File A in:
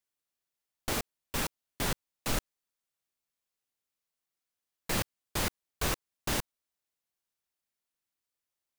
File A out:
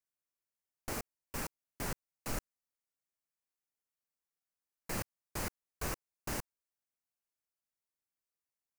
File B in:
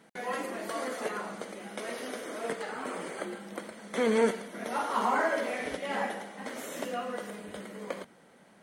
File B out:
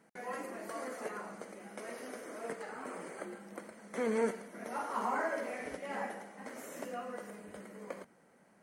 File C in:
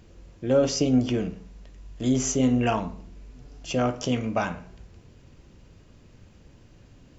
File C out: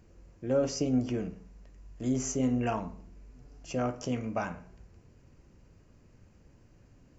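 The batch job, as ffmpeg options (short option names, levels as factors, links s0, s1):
-af "equalizer=f=3500:t=o:w=0.53:g=-11,volume=0.473"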